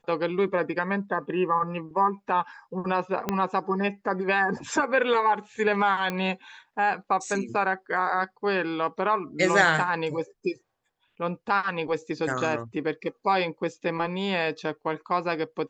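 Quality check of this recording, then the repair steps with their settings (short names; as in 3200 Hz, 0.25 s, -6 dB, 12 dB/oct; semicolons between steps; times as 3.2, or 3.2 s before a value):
3.29 pop -11 dBFS
6.1 pop -15 dBFS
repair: de-click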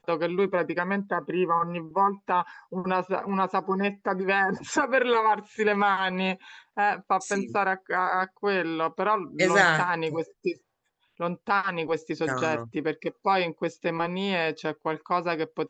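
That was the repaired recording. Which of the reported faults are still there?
3.29 pop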